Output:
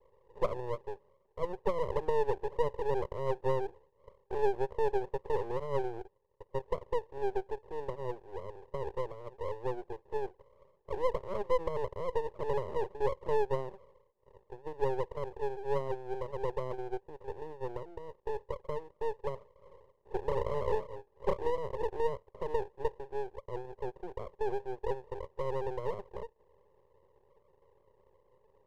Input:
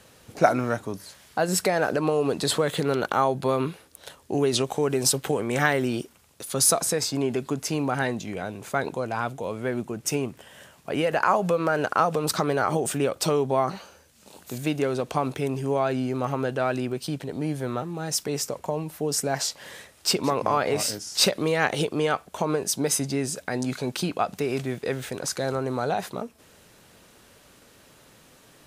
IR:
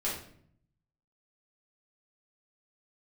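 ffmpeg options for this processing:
-filter_complex "[0:a]asuperpass=centerf=460:order=8:qfactor=2.2,asettb=1/sr,asplit=3[s0][s1][s2];[s0]atrim=end=20.254[s3];[s1]atrim=start=20.25:end=21.58,asetpts=PTS-STARTPTS,afade=t=in:d=0.004:c=qsin,afade=t=out:st=1.326:d=0.004:c=qsin,asplit=2[s4][s5];[s5]adelay=32,volume=0.501[s6];[s4][s6]amix=inputs=2:normalize=0,atrim=end_sample=58653[s7];[s2]atrim=start=21.576[s8];[s3][s7]acrossfade=d=0.004:c1=hsin:c2=qsin[s9];[s9][s8]acrossfade=d=0.004:c1=qsin:c2=hsin,aeval=exprs='max(val(0),0)':c=same"

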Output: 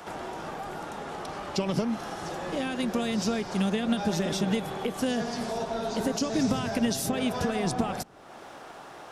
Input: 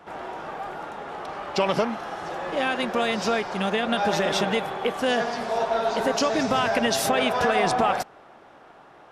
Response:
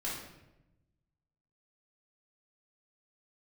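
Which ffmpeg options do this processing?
-filter_complex "[0:a]bass=f=250:g=-1,treble=f=4000:g=12,asplit=2[s0][s1];[s1]alimiter=limit=0.211:level=0:latency=1:release=154,volume=0.841[s2];[s0][s2]amix=inputs=2:normalize=0,acrossover=split=300[s3][s4];[s4]acompressor=threshold=0.01:ratio=2.5[s5];[s3][s5]amix=inputs=2:normalize=0"

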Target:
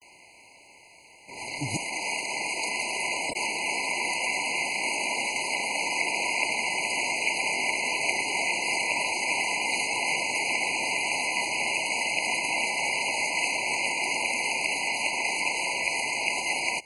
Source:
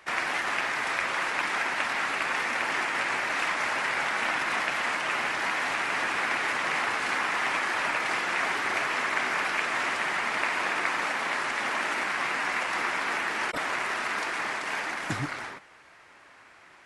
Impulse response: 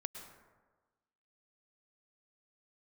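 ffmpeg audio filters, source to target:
-af "areverse,crystalizer=i=4:c=0,afftfilt=real='re*eq(mod(floor(b*sr/1024/1000),2),0)':imag='im*eq(mod(floor(b*sr/1024/1000),2),0)':win_size=1024:overlap=0.75"

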